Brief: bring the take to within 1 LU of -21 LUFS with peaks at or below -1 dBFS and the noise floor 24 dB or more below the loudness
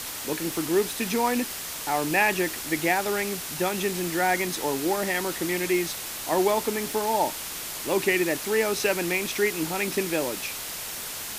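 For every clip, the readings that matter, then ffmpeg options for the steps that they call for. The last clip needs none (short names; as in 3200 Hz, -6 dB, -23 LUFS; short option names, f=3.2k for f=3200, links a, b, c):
noise floor -35 dBFS; noise floor target -50 dBFS; loudness -26.0 LUFS; peak -8.0 dBFS; loudness target -21.0 LUFS
-> -af "afftdn=nr=15:nf=-35"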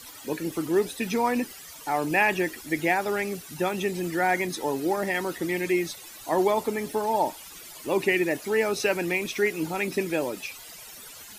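noise floor -45 dBFS; noise floor target -51 dBFS
-> -af "afftdn=nr=6:nf=-45"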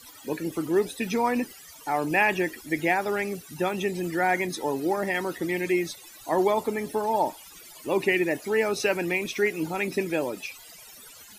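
noise floor -48 dBFS; noise floor target -51 dBFS
-> -af "afftdn=nr=6:nf=-48"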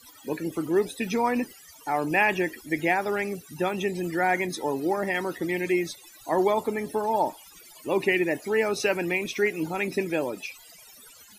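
noise floor -51 dBFS; loudness -27.0 LUFS; peak -8.5 dBFS; loudness target -21.0 LUFS
-> -af "volume=6dB"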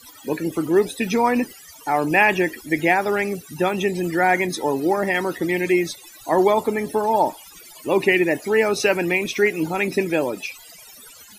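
loudness -21.0 LUFS; peak -2.5 dBFS; noise floor -45 dBFS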